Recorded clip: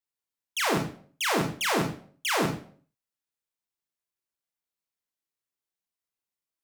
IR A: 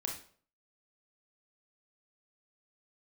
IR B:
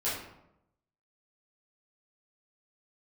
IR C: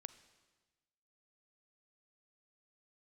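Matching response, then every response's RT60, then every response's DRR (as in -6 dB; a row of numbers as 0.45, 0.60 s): A; 0.50, 0.85, 1.3 s; 0.5, -11.0, 13.5 dB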